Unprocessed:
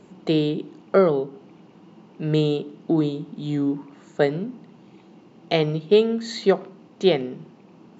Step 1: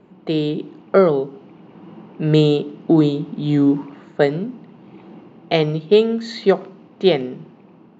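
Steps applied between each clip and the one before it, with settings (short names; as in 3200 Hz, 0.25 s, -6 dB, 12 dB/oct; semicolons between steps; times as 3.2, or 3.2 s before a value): low-pass opened by the level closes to 2500 Hz, open at -14 dBFS; AGC gain up to 11 dB; gain -1 dB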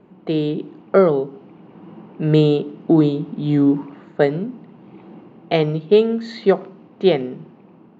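high shelf 4800 Hz -11.5 dB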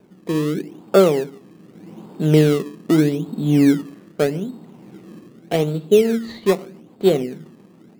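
rotary speaker horn 0.8 Hz, later 7 Hz, at 5.57; in parallel at -4 dB: decimation with a swept rate 21×, swing 100% 0.82 Hz; on the sum: gain -2.5 dB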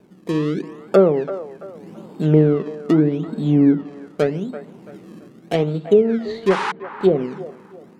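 painted sound noise, 6.5–6.72, 780–11000 Hz -10 dBFS; treble ducked by the level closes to 1100 Hz, closed at -10.5 dBFS; band-limited delay 0.335 s, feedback 35%, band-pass 970 Hz, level -11 dB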